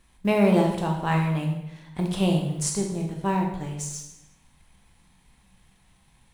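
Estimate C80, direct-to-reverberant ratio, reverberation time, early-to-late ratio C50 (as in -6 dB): 7.5 dB, 1.0 dB, 0.85 s, 5.0 dB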